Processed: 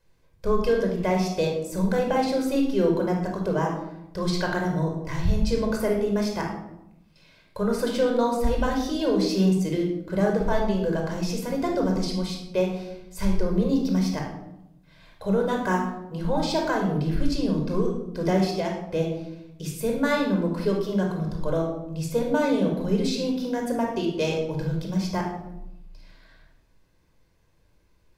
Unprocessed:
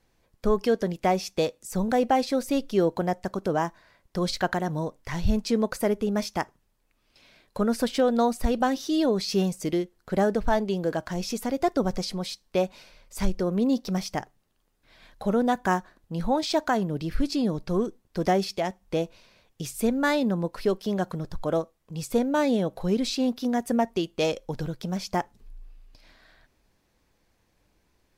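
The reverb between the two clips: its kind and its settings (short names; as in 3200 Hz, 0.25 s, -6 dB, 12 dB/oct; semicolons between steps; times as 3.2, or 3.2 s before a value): shoebox room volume 2600 m³, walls furnished, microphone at 5.1 m; gain -4.5 dB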